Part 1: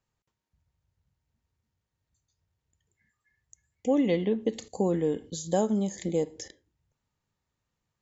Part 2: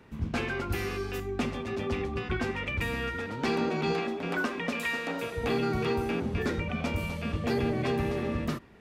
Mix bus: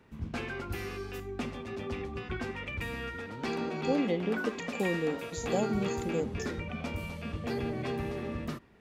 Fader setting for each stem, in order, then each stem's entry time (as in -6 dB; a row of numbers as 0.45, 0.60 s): -5.0, -5.5 dB; 0.00, 0.00 s